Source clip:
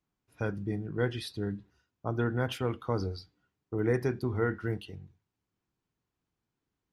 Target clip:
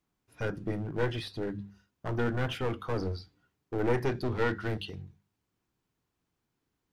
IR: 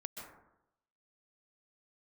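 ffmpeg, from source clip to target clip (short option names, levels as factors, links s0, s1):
-filter_complex "[0:a]bandreject=f=50:t=h:w=6,bandreject=f=100:t=h:w=6,bandreject=f=150:t=h:w=6,bandreject=f=200:t=h:w=6,aeval=exprs='clip(val(0),-1,0.0158)':c=same,acrossover=split=3800[s0][s1];[s1]acompressor=threshold=0.002:ratio=4:attack=1:release=60[s2];[s0][s2]amix=inputs=2:normalize=0,asettb=1/sr,asplit=3[s3][s4][s5];[s3]atrim=end=4.074[s6];[s4]atrim=start=4.07:end=5.02,asetpts=PTS-STARTPTS,afade=t=in:d=0.004:c=qsin,afade=t=out:st=0.946:d=0.004:c=qsin,equalizer=f=4000:t=o:w=1.1:g=7[s7];[s5]atrim=start=5.016[s8];[s6][s7]acrossfade=d=0.004:c1=hsin:c2=qsin[s9];[s9][s8]acrossfade=d=0.004:c1=qsin:c2=hsin,volume=1.58"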